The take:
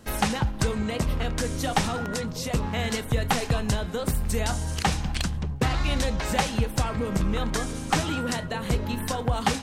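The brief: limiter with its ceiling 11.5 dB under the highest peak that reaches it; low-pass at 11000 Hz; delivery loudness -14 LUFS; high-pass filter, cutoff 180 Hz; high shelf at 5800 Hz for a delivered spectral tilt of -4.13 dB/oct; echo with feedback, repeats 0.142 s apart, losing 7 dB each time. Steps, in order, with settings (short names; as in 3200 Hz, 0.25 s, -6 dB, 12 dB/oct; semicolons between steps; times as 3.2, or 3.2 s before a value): HPF 180 Hz; LPF 11000 Hz; high shelf 5800 Hz -3 dB; limiter -20.5 dBFS; feedback echo 0.142 s, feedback 45%, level -7 dB; gain +17 dB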